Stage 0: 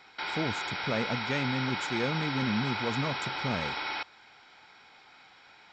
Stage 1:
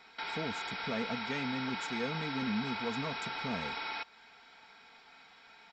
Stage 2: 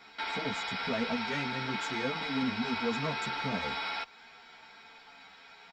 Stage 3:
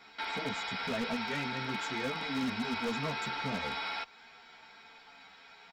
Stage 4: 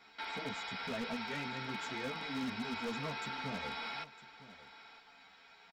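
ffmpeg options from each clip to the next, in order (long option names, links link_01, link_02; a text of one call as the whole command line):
ffmpeg -i in.wav -filter_complex "[0:a]aecho=1:1:4.4:0.55,asplit=2[link_01][link_02];[link_02]acompressor=threshold=-38dB:ratio=6,volume=-1dB[link_03];[link_01][link_03]amix=inputs=2:normalize=0,volume=-8.5dB" out.wav
ffmpeg -i in.wav -filter_complex "[0:a]asplit=2[link_01][link_02];[link_02]asoftclip=type=tanh:threshold=-32.5dB,volume=-4.5dB[link_03];[link_01][link_03]amix=inputs=2:normalize=0,asplit=2[link_04][link_05];[link_05]adelay=10.8,afreqshift=-0.62[link_06];[link_04][link_06]amix=inputs=2:normalize=1,volume=3dB" out.wav
ffmpeg -i in.wav -af "aeval=exprs='0.0531*(abs(mod(val(0)/0.0531+3,4)-2)-1)':channel_layout=same,volume=-1.5dB" out.wav
ffmpeg -i in.wav -af "aecho=1:1:957:0.15,volume=-5dB" out.wav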